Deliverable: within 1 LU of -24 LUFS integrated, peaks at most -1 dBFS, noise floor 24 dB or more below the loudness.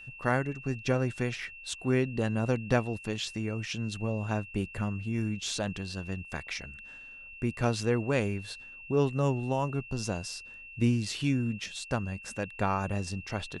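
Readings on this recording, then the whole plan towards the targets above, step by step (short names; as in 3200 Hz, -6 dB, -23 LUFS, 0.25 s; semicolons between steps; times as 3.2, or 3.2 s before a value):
steady tone 2700 Hz; tone level -45 dBFS; loudness -31.5 LUFS; peak -11.0 dBFS; loudness target -24.0 LUFS
-> notch 2700 Hz, Q 30; gain +7.5 dB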